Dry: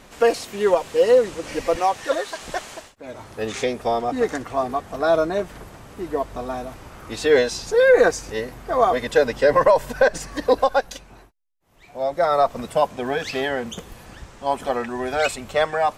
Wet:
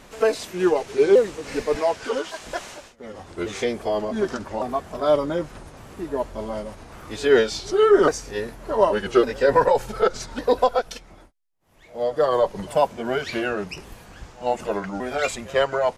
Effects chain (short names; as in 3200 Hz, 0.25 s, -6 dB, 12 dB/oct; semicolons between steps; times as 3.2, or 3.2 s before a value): repeated pitch sweeps -4 st, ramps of 1.154 s; reverse echo 96 ms -23.5 dB